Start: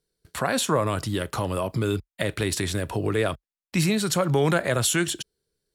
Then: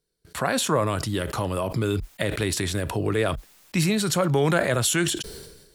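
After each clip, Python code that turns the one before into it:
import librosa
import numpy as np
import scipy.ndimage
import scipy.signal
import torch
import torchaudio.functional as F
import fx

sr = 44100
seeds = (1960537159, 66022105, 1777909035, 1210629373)

y = fx.sustainer(x, sr, db_per_s=51.0)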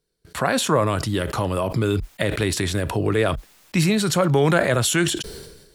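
y = fx.high_shelf(x, sr, hz=6000.0, db=-4.0)
y = y * 10.0 ** (3.5 / 20.0)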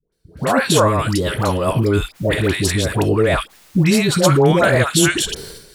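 y = fx.dispersion(x, sr, late='highs', ms=124.0, hz=790.0)
y = y * 10.0 ** (5.0 / 20.0)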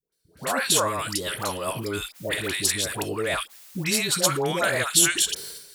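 y = fx.tilt_eq(x, sr, slope=3.0)
y = y * 10.0 ** (-8.5 / 20.0)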